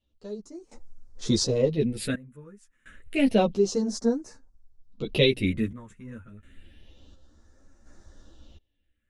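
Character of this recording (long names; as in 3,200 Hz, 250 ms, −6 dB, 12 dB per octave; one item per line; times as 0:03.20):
phaser sweep stages 4, 0.29 Hz, lowest notch 700–3,000 Hz
sample-and-hold tremolo 1.4 Hz, depth 95%
a shimmering, thickened sound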